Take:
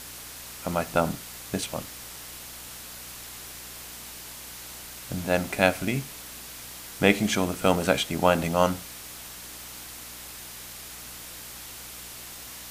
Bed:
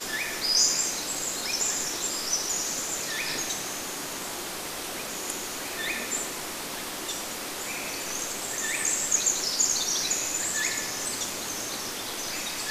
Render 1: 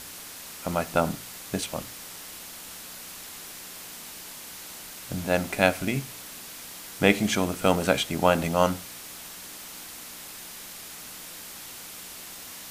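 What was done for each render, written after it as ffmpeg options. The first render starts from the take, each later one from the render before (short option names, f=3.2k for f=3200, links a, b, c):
-af "bandreject=f=60:t=h:w=4,bandreject=f=120:t=h:w=4"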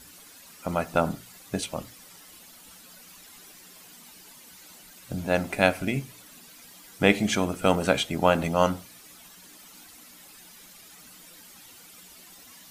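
-af "afftdn=nr=12:nf=-42"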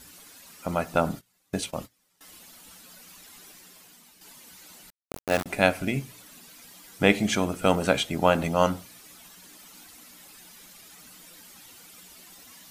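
-filter_complex "[0:a]asettb=1/sr,asplit=3[a][b][c];[a]atrim=end=1.084[d];[b]atrim=start=1.08:end=2.21,asetpts=PTS-STARTPTS,afade=t=in:d=0.004:c=qsin,afade=t=out:st=1.126:d=0.004:c=qsin,agate=range=-21dB:threshold=-44dB:ratio=16:release=100:detection=peak[e];[c]atrim=start=2.206[f];[d][e]acrossfade=d=0.004:c1=hsin:c2=qsin[g];[g][f]acrossfade=d=0.004:c1=qsin:c2=hsin,asettb=1/sr,asplit=3[h][i][j];[h]atrim=end=4.904[k];[i]atrim=start=4.9:end=5.46,asetpts=PTS-STARTPTS,afade=t=in:d=0.004:c=qsin,afade=t=out:st=0.556:d=0.004:c=qsin,aeval=exprs='val(0)*gte(abs(val(0)),0.0562)':c=same[l];[j]atrim=start=5.456[m];[k][l]acrossfade=d=0.004:c1=hsin:c2=qsin[n];[n][m]acrossfade=d=0.004:c1=qsin:c2=hsin,asplit=2[o][p];[o]atrim=end=4.21,asetpts=PTS-STARTPTS,afade=t=out:st=3.5:d=0.71:silence=0.398107[q];[p]atrim=start=4.21,asetpts=PTS-STARTPTS,afade=t=in:d=0.004:c=hsin:silence=0.398107[r];[q][r]concat=n=2:v=0:a=1"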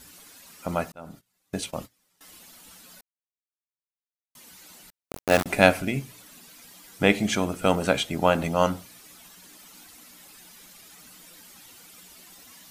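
-filter_complex "[0:a]asplit=3[a][b][c];[a]afade=t=out:st=5.26:d=0.02[d];[b]acontrast=20,afade=t=in:st=5.26:d=0.02,afade=t=out:st=5.8:d=0.02[e];[c]afade=t=in:st=5.8:d=0.02[f];[d][e][f]amix=inputs=3:normalize=0,asplit=4[g][h][i][j];[g]atrim=end=0.92,asetpts=PTS-STARTPTS,afade=t=out:st=0.916:d=0.004:c=hsin[k];[h]atrim=start=0.92:end=3.01,asetpts=PTS-STARTPTS,afade=t=in:d=0.76,afade=t=out:st=2.086:d=0.004:c=hsin[l];[i]atrim=start=3.01:end=4.35,asetpts=PTS-STARTPTS,volume=0[m];[j]atrim=start=4.35,asetpts=PTS-STARTPTS,afade=t=in:d=0.004:c=hsin[n];[k][l][m][n]concat=n=4:v=0:a=1"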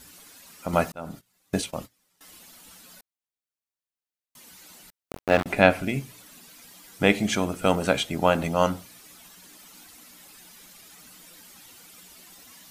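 -filter_complex "[0:a]asettb=1/sr,asplit=3[a][b][c];[a]atrim=end=0.734[d];[b]atrim=start=0.73:end=1.62,asetpts=PTS-STARTPTS,afade=t=in:d=0.004:c=qsin,afade=t=out:st=0.886:d=0.004:c=qsin,acontrast=33[e];[c]atrim=start=1.616[f];[d][e]acrossfade=d=0.004:c1=hsin:c2=qsin[g];[g][f]acrossfade=d=0.004:c1=qsin:c2=hsin,asettb=1/sr,asplit=3[h][i][j];[h]atrim=end=5.134[k];[i]atrim=start=5.13:end=5.89,asetpts=PTS-STARTPTS,afade=t=in:d=0.004:c=qsin,afade=t=out:st=0.756:d=0.004:c=qsin,acrossover=split=3800[l][m];[m]acompressor=threshold=-45dB:ratio=4:attack=1:release=60[n];[l][n]amix=inputs=2:normalize=0[o];[j]atrim=start=5.886[p];[k][o]acrossfade=d=0.004:c1=hsin:c2=qsin[q];[q][p]acrossfade=d=0.004:c1=qsin:c2=hsin"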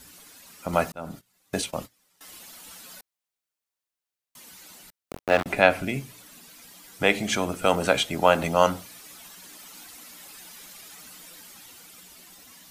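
-filter_complex "[0:a]acrossover=split=390[a][b];[a]alimiter=level_in=0.5dB:limit=-24dB:level=0:latency=1,volume=-0.5dB[c];[b]dynaudnorm=f=400:g=9:m=5.5dB[d];[c][d]amix=inputs=2:normalize=0"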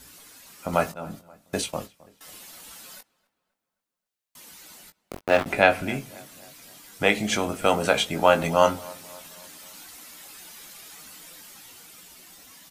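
-filter_complex "[0:a]asplit=2[a][b];[b]adelay=19,volume=-8dB[c];[a][c]amix=inputs=2:normalize=0,asplit=2[d][e];[e]adelay=265,lowpass=f=2.3k:p=1,volume=-22dB,asplit=2[f][g];[g]adelay=265,lowpass=f=2.3k:p=1,volume=0.53,asplit=2[h][i];[i]adelay=265,lowpass=f=2.3k:p=1,volume=0.53,asplit=2[j][k];[k]adelay=265,lowpass=f=2.3k:p=1,volume=0.53[l];[d][f][h][j][l]amix=inputs=5:normalize=0"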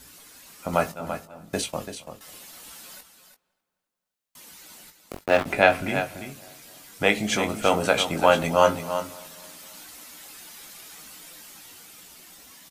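-af "aecho=1:1:337:0.335"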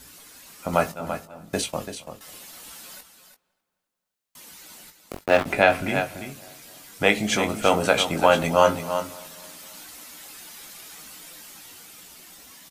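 -af "volume=1.5dB,alimiter=limit=-3dB:level=0:latency=1"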